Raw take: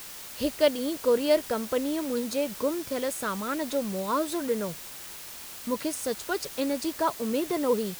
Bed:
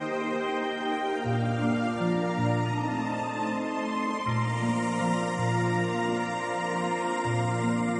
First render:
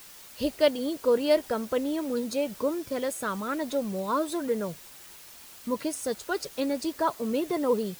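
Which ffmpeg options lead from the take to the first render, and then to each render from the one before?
-af "afftdn=nr=7:nf=-42"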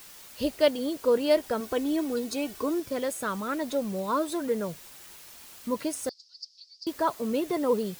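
-filter_complex "[0:a]asettb=1/sr,asplit=3[a][b][c];[a]atrim=end=1.604[d];[b]atrim=start=1.6:end=2.8,asetpts=PTS-STARTPTS,afade=t=in:d=0.004:c=qsin,afade=t=out:st=1.196:d=0.004:c=qsin,aecho=1:1:2.7:0.62,atrim=end_sample=52920[e];[c]atrim=start=2.796[f];[d][e]acrossfade=d=0.004:c1=hsin:c2=qsin[g];[g][f]acrossfade=d=0.004:c1=qsin:c2=hsin,asettb=1/sr,asplit=3[h][i][j];[h]atrim=end=6.094[k];[i]atrim=start=6.09:end=6.87,asetpts=PTS-STARTPTS,afade=t=in:d=0.004:c=qsin,afade=t=out:st=0.776:d=0.004:c=qsin,asuperpass=centerf=4900:order=4:qfactor=4.7[l];[j]atrim=start=6.866[m];[k][l]acrossfade=d=0.004:c1=hsin:c2=qsin[n];[n][m]acrossfade=d=0.004:c1=qsin:c2=hsin"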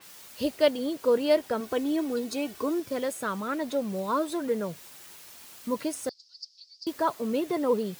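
-af "highpass=82,adynamicequalizer=threshold=0.00447:dfrequency=4600:dqfactor=0.7:tfrequency=4600:tqfactor=0.7:attack=5:release=100:ratio=0.375:range=2.5:mode=cutabove:tftype=highshelf"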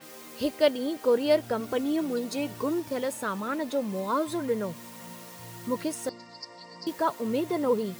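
-filter_complex "[1:a]volume=-19dB[a];[0:a][a]amix=inputs=2:normalize=0"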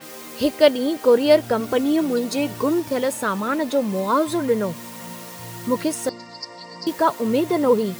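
-af "volume=8dB"

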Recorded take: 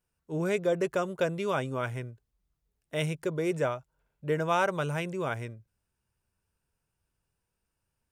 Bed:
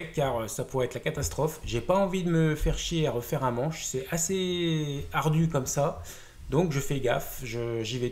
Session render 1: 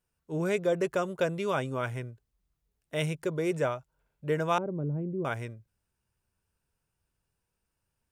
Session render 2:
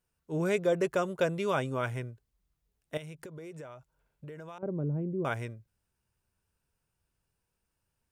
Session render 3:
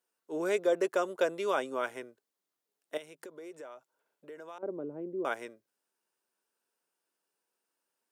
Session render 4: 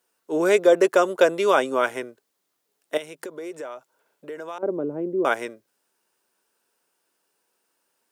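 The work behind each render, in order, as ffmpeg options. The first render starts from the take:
-filter_complex "[0:a]asettb=1/sr,asplit=3[a][b][c];[a]atrim=end=4.584[d];[b]atrim=start=4.58:end=5.25,asetpts=PTS-STARTPTS,afade=t=in:d=0.004:c=qsin,afade=t=out:st=0.666:d=0.004:c=qsin,lowpass=f=300:t=q:w=1.7[e];[c]atrim=start=5.246[f];[d][e]acrossfade=d=0.004:c1=hsin:c2=qsin[g];[g][f]acrossfade=d=0.004:c1=qsin:c2=hsin"
-filter_complex "[0:a]asettb=1/sr,asplit=3[a][b][c];[a]atrim=end=2.974[d];[b]atrim=start=2.97:end=4.63,asetpts=PTS-STARTPTS,afade=t=in:d=0.004:c=qsin,afade=t=out:st=1.656:d=0.004:c=qsin,acompressor=threshold=-41dB:ratio=12:attack=3.2:release=140:knee=1:detection=peak[e];[c]atrim=start=4.626[f];[d][e]acrossfade=d=0.004:c1=hsin:c2=qsin[g];[g][f]acrossfade=d=0.004:c1=qsin:c2=hsin"
-af "highpass=f=290:w=0.5412,highpass=f=290:w=1.3066,equalizer=f=2.4k:w=3:g=-3"
-af "volume=11.5dB"

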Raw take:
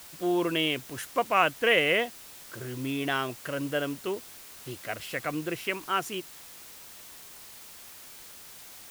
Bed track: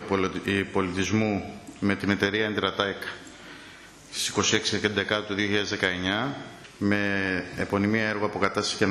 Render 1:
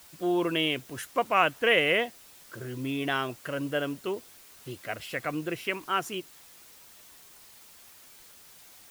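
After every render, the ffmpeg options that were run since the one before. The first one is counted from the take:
-af "afftdn=nr=6:nf=-48"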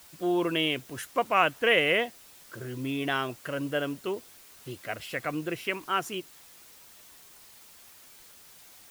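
-af anull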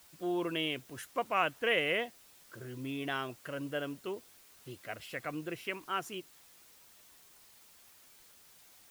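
-af "volume=-7dB"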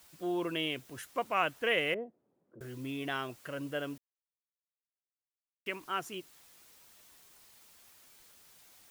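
-filter_complex "[0:a]asettb=1/sr,asplit=3[a][b][c];[a]atrim=end=1.944[d];[b]atrim=start=1.94:end=2.61,asetpts=PTS-STARTPTS,afade=t=in:d=0.004:c=qsin,afade=t=out:st=0.666:d=0.004:c=qsin,asuperpass=centerf=270:order=4:qfactor=0.73[e];[c]atrim=start=2.606[f];[d][e]acrossfade=d=0.004:c1=hsin:c2=qsin[g];[g][f]acrossfade=d=0.004:c1=qsin:c2=hsin,asplit=3[h][i][j];[h]atrim=end=3.98,asetpts=PTS-STARTPTS,afade=t=out:st=3.976:d=0.004:c=hsin[k];[i]atrim=start=3.98:end=5.66,asetpts=PTS-STARTPTS,volume=0[l];[j]atrim=start=5.66,asetpts=PTS-STARTPTS,afade=t=in:d=0.004:c=hsin[m];[k][l][m]concat=n=3:v=0:a=1"

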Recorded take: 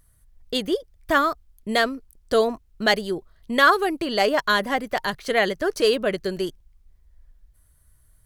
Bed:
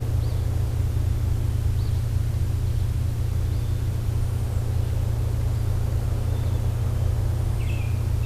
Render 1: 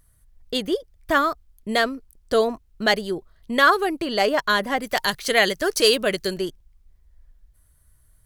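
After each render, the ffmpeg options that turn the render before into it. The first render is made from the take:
-filter_complex "[0:a]asettb=1/sr,asplit=3[a][b][c];[a]atrim=end=4.824[d];[b]atrim=start=4.82:end=6.34,asetpts=PTS-STARTPTS,afade=t=in:d=0.004:c=qsin,afade=t=out:st=1.516:d=0.004:c=qsin,highshelf=f=2.7k:g=11.5[e];[c]atrim=start=6.336[f];[d][e]acrossfade=d=0.004:c1=hsin:c2=qsin[g];[g][f]acrossfade=d=0.004:c1=qsin:c2=hsin"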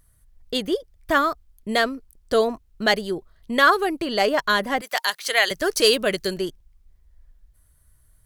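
-filter_complex "[0:a]asettb=1/sr,asplit=3[a][b][c];[a]atrim=end=4.814[d];[b]atrim=start=4.81:end=5.51,asetpts=PTS-STARTPTS,afade=t=in:d=0.004:c=qsin,afade=t=out:st=0.696:d=0.004:c=qsin,highpass=680[e];[c]atrim=start=5.506[f];[d][e]acrossfade=d=0.004:c1=hsin:c2=qsin[g];[g][f]acrossfade=d=0.004:c1=qsin:c2=hsin"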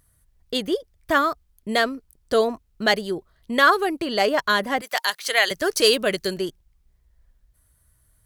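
-af "highpass=f=57:p=1"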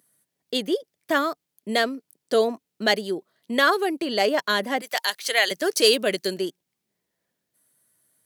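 -af "highpass=f=190:w=0.5412,highpass=f=190:w=1.3066,equalizer=f=1.2k:w=1.5:g=-5.5"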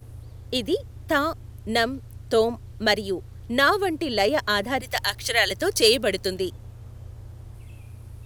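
-filter_complex "[1:a]volume=-17.5dB[a];[0:a][a]amix=inputs=2:normalize=0"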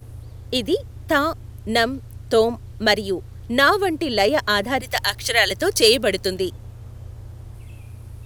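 -af "volume=3.5dB,alimiter=limit=-1dB:level=0:latency=1"

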